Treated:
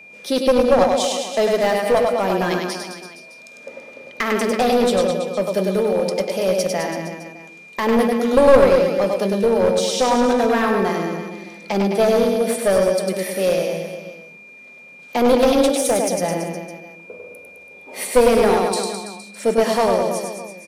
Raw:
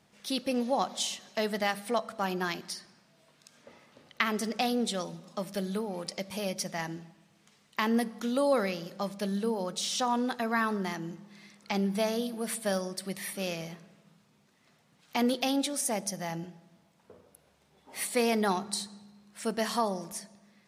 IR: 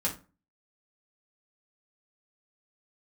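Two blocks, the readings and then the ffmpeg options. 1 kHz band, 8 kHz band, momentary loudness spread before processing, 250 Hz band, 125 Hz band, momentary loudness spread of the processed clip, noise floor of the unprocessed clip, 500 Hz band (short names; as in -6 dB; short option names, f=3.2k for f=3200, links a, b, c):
+11.5 dB, +8.0 dB, 11 LU, +10.5 dB, +10.5 dB, 18 LU, -66 dBFS, +17.5 dB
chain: -filter_complex "[0:a]lowshelf=f=170:g=-4,asplit=2[a][b];[b]aecho=0:1:100|210|331|464.1|610.5:0.631|0.398|0.251|0.158|0.1[c];[a][c]amix=inputs=2:normalize=0,acontrast=64,equalizer=f=125:t=o:w=1:g=-4,equalizer=f=250:t=o:w=1:g=4,equalizer=f=500:t=o:w=1:g=12,asplit=2[d][e];[1:a]atrim=start_sample=2205[f];[e][f]afir=irnorm=-1:irlink=0,volume=-16.5dB[g];[d][g]amix=inputs=2:normalize=0,aeval=exprs='clip(val(0),-1,0.266)':c=same,aeval=exprs='val(0)+0.0112*sin(2*PI*2400*n/s)':c=same,volume=-1.5dB"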